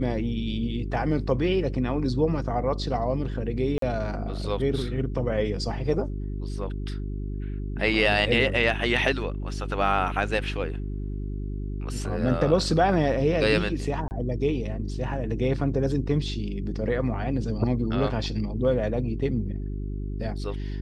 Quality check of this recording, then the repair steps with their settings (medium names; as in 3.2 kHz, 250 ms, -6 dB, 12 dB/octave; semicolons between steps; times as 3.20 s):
hum 50 Hz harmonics 8 -31 dBFS
3.78–3.82 s: dropout 43 ms
14.08–14.11 s: dropout 29 ms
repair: de-hum 50 Hz, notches 8; interpolate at 3.78 s, 43 ms; interpolate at 14.08 s, 29 ms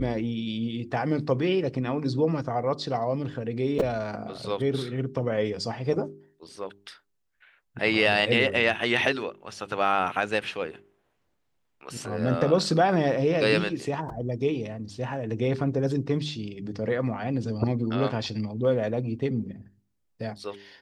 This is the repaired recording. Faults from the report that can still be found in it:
nothing left